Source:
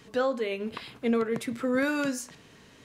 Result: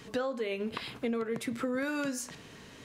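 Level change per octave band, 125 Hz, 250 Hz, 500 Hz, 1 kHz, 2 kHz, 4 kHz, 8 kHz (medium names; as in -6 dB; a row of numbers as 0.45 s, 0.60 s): -2.5 dB, -5.0 dB, -5.0 dB, -5.0 dB, -5.0 dB, -1.5 dB, -1.0 dB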